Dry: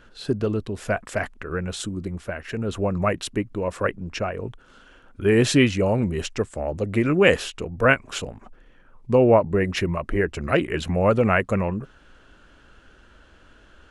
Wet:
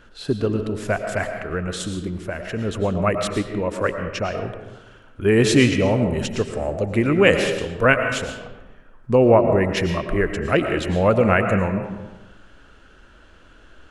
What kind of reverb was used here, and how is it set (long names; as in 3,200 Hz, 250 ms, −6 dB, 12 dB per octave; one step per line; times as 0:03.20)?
comb and all-pass reverb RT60 1.1 s, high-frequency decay 0.6×, pre-delay 70 ms, DRR 6 dB
level +1.5 dB